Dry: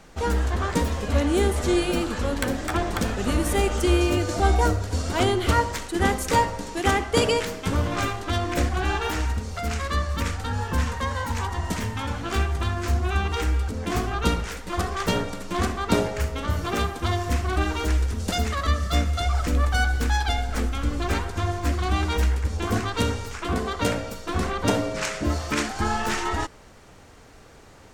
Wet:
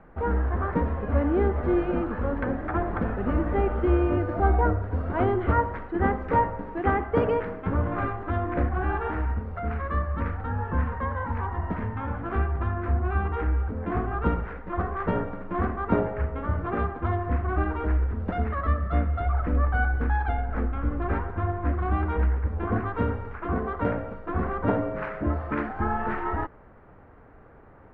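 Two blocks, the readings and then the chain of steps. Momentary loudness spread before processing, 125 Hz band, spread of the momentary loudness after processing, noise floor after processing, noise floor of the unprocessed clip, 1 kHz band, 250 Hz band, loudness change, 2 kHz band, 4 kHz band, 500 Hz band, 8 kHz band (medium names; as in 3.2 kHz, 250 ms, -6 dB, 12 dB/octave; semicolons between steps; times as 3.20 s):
6 LU, -1.5 dB, 6 LU, -50 dBFS, -48 dBFS, -1.5 dB, -1.5 dB, -2.0 dB, -5.0 dB, under -20 dB, -1.5 dB, under -40 dB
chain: low-pass 1.7 kHz 24 dB/octave; trim -1.5 dB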